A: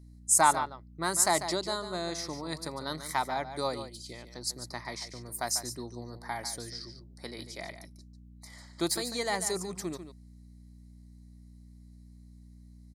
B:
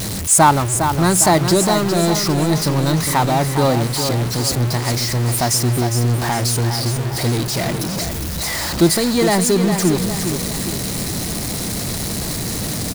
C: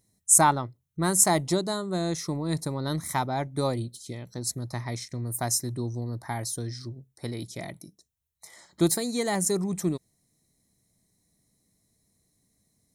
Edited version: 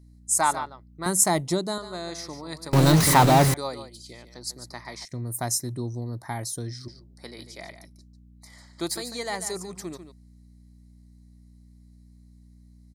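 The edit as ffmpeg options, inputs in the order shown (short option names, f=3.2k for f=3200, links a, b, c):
-filter_complex "[2:a]asplit=2[a][b];[0:a]asplit=4[c][d][e][f];[c]atrim=end=1.062[g];[a]atrim=start=1.058:end=1.782[h];[d]atrim=start=1.778:end=2.732[i];[1:a]atrim=start=2.728:end=3.542[j];[e]atrim=start=3.538:end=5.052[k];[b]atrim=start=5.048:end=6.882[l];[f]atrim=start=6.878[m];[g][h]acrossfade=d=0.004:c1=hsin:c2=hsin[n];[n][i]acrossfade=d=0.004:c1=hsin:c2=hsin[o];[o][j]acrossfade=d=0.004:c1=hsin:c2=hsin[p];[p][k]acrossfade=d=0.004:c1=hsin:c2=hsin[q];[q][l]acrossfade=d=0.004:c1=hsin:c2=hsin[r];[r][m]acrossfade=d=0.004:c1=hsin:c2=hsin"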